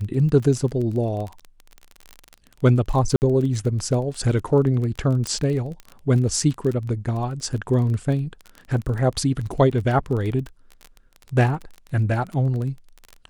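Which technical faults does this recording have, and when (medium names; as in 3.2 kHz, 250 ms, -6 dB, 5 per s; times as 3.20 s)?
crackle 24 per s -28 dBFS
3.16–3.22 s: dropout 59 ms
5.27 s: pop -12 dBFS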